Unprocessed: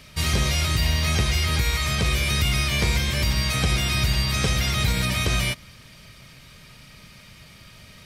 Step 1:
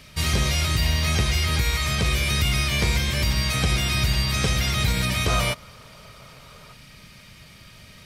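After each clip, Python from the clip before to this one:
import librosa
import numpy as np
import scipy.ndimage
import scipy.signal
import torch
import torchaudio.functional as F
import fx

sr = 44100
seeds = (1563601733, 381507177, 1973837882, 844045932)

y = fx.spec_box(x, sr, start_s=5.28, length_s=1.45, low_hz=400.0, high_hz=1500.0, gain_db=8)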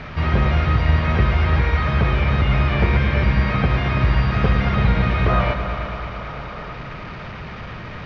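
y = fx.delta_mod(x, sr, bps=32000, step_db=-30.0)
y = scipy.signal.sosfilt(scipy.signal.cheby1(2, 1.0, 1500.0, 'lowpass', fs=sr, output='sos'), y)
y = fx.echo_heads(y, sr, ms=111, heads='all three', feedback_pct=65, wet_db=-14.0)
y = F.gain(torch.from_numpy(y), 6.0).numpy()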